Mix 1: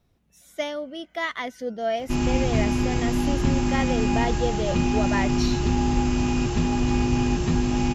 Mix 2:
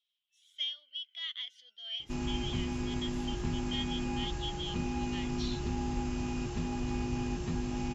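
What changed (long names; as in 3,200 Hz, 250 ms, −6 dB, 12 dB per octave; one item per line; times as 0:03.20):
speech: add four-pole ladder band-pass 3,300 Hz, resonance 85%
background −12.0 dB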